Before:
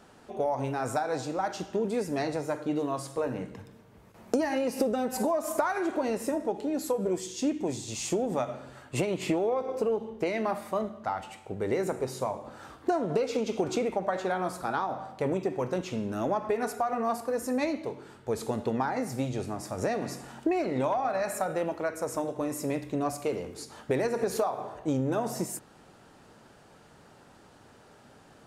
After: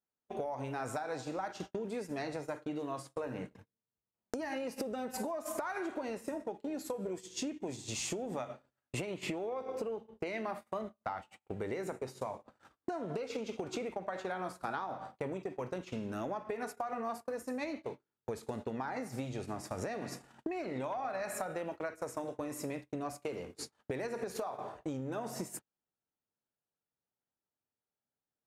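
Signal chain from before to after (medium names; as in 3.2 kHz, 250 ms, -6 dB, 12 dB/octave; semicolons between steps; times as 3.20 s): compression 6:1, threshold -36 dBFS, peak gain reduction 14 dB; dynamic bell 2.2 kHz, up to +4 dB, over -54 dBFS, Q 0.72; gate -41 dBFS, range -43 dB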